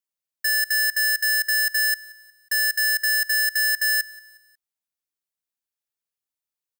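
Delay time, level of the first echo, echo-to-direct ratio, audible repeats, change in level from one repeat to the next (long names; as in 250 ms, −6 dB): 181 ms, −22.0 dB, −21.0 dB, 2, −7.5 dB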